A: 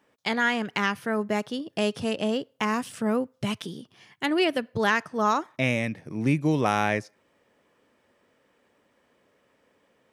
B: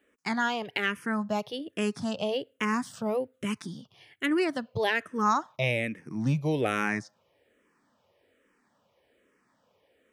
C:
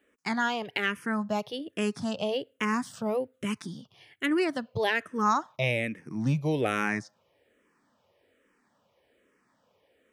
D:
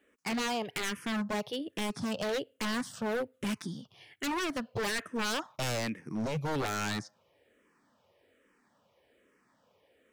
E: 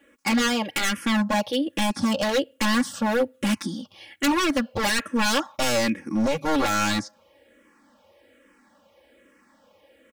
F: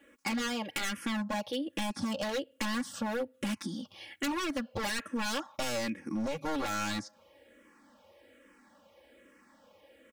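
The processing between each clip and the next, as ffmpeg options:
ffmpeg -i in.wav -filter_complex "[0:a]asplit=2[link_01][link_02];[link_02]afreqshift=-1.2[link_03];[link_01][link_03]amix=inputs=2:normalize=1" out.wav
ffmpeg -i in.wav -af anull out.wav
ffmpeg -i in.wav -af "aeval=exprs='0.0447*(abs(mod(val(0)/0.0447+3,4)-2)-1)':channel_layout=same" out.wav
ffmpeg -i in.wav -af "aecho=1:1:3.6:0.95,volume=7.5dB" out.wav
ffmpeg -i in.wav -af "acompressor=threshold=-32dB:ratio=2.5,volume=-2.5dB" out.wav

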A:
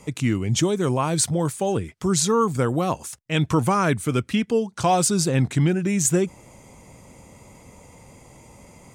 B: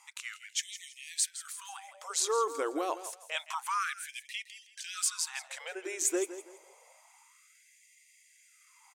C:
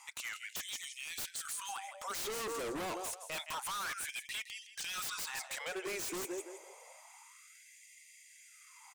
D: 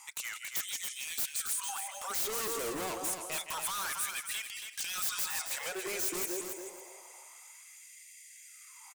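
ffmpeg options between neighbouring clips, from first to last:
ffmpeg -i in.wav -af "lowshelf=frequency=260:width_type=q:width=1.5:gain=6.5,aecho=1:1:164|328|492:0.224|0.0649|0.0188,afftfilt=real='re*gte(b*sr/1024,280*pow(1800/280,0.5+0.5*sin(2*PI*0.28*pts/sr)))':imag='im*gte(b*sr/1024,280*pow(1800/280,0.5+0.5*sin(2*PI*0.28*pts/sr)))':win_size=1024:overlap=0.75,volume=-7.5dB" out.wav
ffmpeg -i in.wav -filter_complex "[0:a]acrossover=split=5100[link_01][link_02];[link_01]asoftclip=type=tanh:threshold=-35dB[link_03];[link_02]alimiter=level_in=3dB:limit=-24dB:level=0:latency=1:release=128,volume=-3dB[link_04];[link_03][link_04]amix=inputs=2:normalize=0,aeval=exprs='0.0119*(abs(mod(val(0)/0.0119+3,4)-2)-1)':channel_layout=same,volume=4dB" out.wav
ffmpeg -i in.wav -filter_complex "[0:a]aecho=1:1:278|556|834:0.473|0.0899|0.0171,acrossover=split=3600[link_01][link_02];[link_02]crystalizer=i=1:c=0[link_03];[link_01][link_03]amix=inputs=2:normalize=0,volume=1dB" out.wav

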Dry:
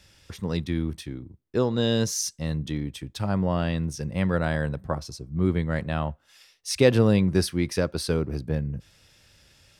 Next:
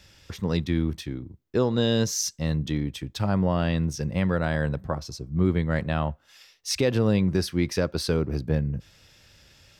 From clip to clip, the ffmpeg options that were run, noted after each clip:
ffmpeg -i in.wav -af "equalizer=frequency=9400:width_type=o:width=0.24:gain=-11.5,alimiter=limit=-14dB:level=0:latency=1:release=279,volume=2.5dB" out.wav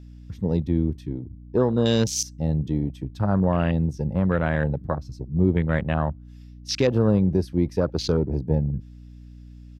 ffmpeg -i in.wav -af "aresample=32000,aresample=44100,afwtdn=0.0224,aeval=exprs='val(0)+0.00631*(sin(2*PI*60*n/s)+sin(2*PI*2*60*n/s)/2+sin(2*PI*3*60*n/s)/3+sin(2*PI*4*60*n/s)/4+sin(2*PI*5*60*n/s)/5)':channel_layout=same,volume=2.5dB" out.wav

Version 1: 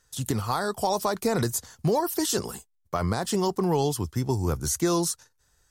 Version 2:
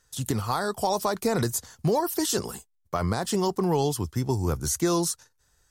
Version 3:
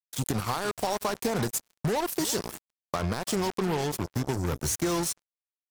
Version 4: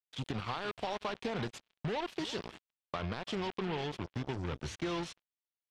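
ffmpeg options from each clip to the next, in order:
ffmpeg -i in.wav -af anull out.wav
ffmpeg -i in.wav -filter_complex "[0:a]acompressor=threshold=-27dB:ratio=3,asplit=2[link_01][link_02];[link_02]adelay=344,volume=-15dB,highshelf=frequency=4000:gain=-7.74[link_03];[link_01][link_03]amix=inputs=2:normalize=0,acrusher=bits=4:mix=0:aa=0.5,volume=1dB" out.wav
ffmpeg -i in.wav -af "lowpass=frequency=3200:width_type=q:width=2,volume=-8.5dB" out.wav

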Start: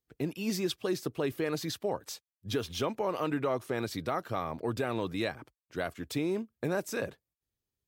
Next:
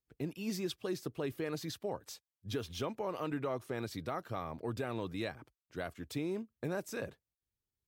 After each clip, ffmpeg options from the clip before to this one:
ffmpeg -i in.wav -af "lowshelf=frequency=130:gain=5.5,volume=-6.5dB" out.wav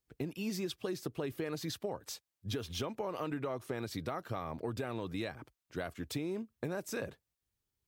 ffmpeg -i in.wav -af "acompressor=threshold=-38dB:ratio=6,volume=4.5dB" out.wav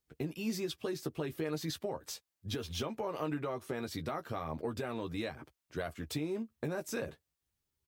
ffmpeg -i in.wav -filter_complex "[0:a]asplit=2[link_01][link_02];[link_02]adelay=13,volume=-7dB[link_03];[link_01][link_03]amix=inputs=2:normalize=0" out.wav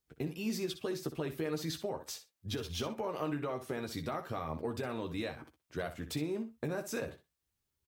ffmpeg -i in.wav -af "aecho=1:1:62|124:0.266|0.0452" out.wav

